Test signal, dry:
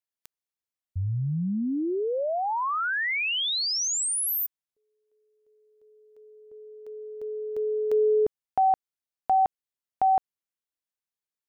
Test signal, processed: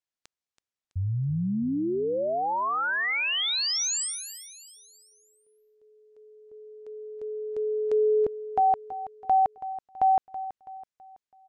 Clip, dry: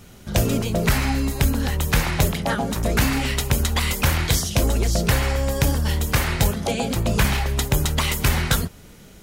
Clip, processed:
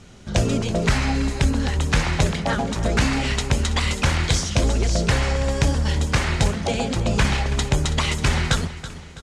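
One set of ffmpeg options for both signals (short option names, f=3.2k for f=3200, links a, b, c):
-filter_complex "[0:a]lowpass=f=8k:w=0.5412,lowpass=f=8k:w=1.3066,asplit=2[a][b];[b]aecho=0:1:328|656|984|1312:0.2|0.0858|0.0369|0.0159[c];[a][c]amix=inputs=2:normalize=0"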